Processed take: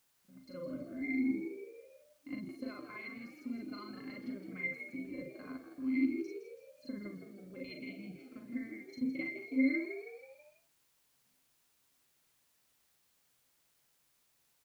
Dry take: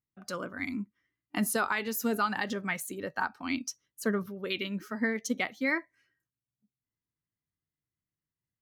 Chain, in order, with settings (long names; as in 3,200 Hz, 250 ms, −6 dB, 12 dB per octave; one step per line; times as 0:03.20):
graphic EQ with 10 bands 250 Hz +10 dB, 1,000 Hz −11 dB, 2,000 Hz +10 dB, 4,000 Hz +3 dB
transient designer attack −7 dB, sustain −3 dB
in parallel at +2.5 dB: downward compressor, threshold −37 dBFS, peak gain reduction 17 dB
on the sum: resonances in every octave C, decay 0.12 s
time stretch by overlap-add 1.7×, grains 186 ms
bit-depth reduction 12 bits, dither triangular
on a send: echo with shifted repeats 163 ms, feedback 48%, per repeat +67 Hz, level −9.5 dB
on the sum: level −2.5 dB